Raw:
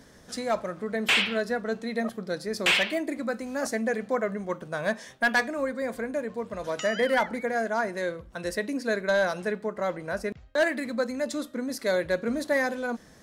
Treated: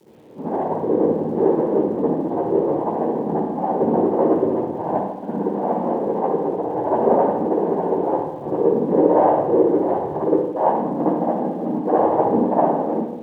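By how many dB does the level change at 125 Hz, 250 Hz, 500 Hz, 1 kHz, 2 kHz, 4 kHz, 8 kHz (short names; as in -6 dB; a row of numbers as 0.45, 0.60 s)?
+11.5 dB, +11.0 dB, +9.5 dB, +12.0 dB, under -15 dB, under -25 dB, under -20 dB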